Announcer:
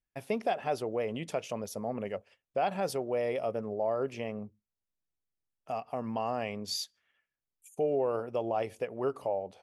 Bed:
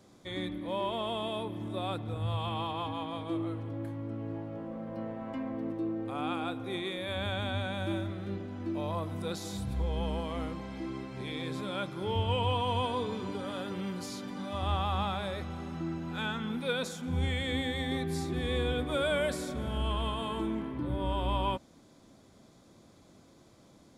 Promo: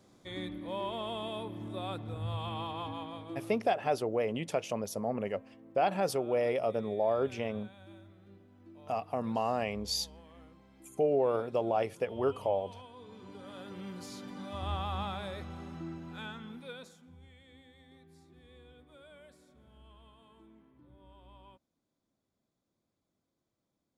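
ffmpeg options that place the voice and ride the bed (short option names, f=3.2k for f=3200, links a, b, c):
-filter_complex "[0:a]adelay=3200,volume=1.5dB[a];[1:a]volume=11.5dB,afade=t=out:st=2.93:d=0.78:silence=0.158489,afade=t=in:st=12.96:d=1.25:silence=0.177828,afade=t=out:st=15.62:d=1.56:silence=0.0841395[b];[a][b]amix=inputs=2:normalize=0"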